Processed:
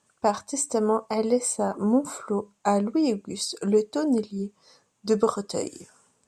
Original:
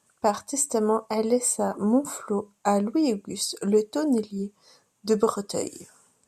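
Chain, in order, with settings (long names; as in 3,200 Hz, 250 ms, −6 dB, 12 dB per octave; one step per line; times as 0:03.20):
low-pass filter 8,200 Hz 12 dB per octave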